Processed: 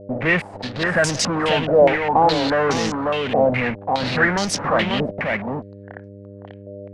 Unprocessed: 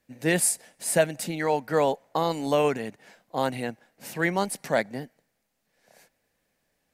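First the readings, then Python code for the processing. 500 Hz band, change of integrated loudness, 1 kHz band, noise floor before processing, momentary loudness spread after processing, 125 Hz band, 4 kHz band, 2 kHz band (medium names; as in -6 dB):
+7.5 dB, +7.0 dB, +9.5 dB, -76 dBFS, 16 LU, +8.5 dB, +12.0 dB, +11.0 dB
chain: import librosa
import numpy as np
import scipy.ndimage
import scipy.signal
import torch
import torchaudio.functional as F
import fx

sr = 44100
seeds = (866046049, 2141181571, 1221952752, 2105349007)

p1 = fx.env_lowpass(x, sr, base_hz=1400.0, full_db=-21.5)
p2 = fx.low_shelf(p1, sr, hz=85.0, db=10.0)
p3 = fx.fuzz(p2, sr, gain_db=47.0, gate_db=-53.0)
p4 = p2 + F.gain(torch.from_numpy(p3), -6.0).numpy()
p5 = fx.dmg_buzz(p4, sr, base_hz=100.0, harmonics=6, level_db=-39.0, tilt_db=-3, odd_only=False)
p6 = p5 + fx.echo_single(p5, sr, ms=540, db=-3.5, dry=0)
p7 = fx.filter_held_lowpass(p6, sr, hz=4.8, low_hz=620.0, high_hz=5800.0)
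y = F.gain(torch.from_numpy(p7), -5.0).numpy()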